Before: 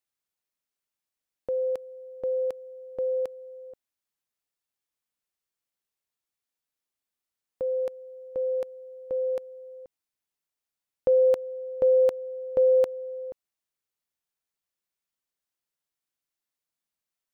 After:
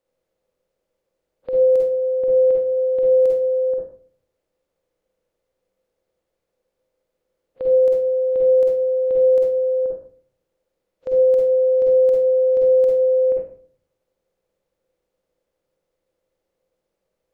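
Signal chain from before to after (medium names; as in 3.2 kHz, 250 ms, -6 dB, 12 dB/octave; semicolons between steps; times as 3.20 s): spectral levelling over time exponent 0.4; spectral noise reduction 27 dB; 1.89–2.72 s: distance through air 410 m; peak limiter -19.5 dBFS, peak gain reduction 6 dB; reverberation RT60 0.45 s, pre-delay 45 ms, DRR -1.5 dB; dynamic bell 1.2 kHz, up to -5 dB, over -31 dBFS, Q 0.76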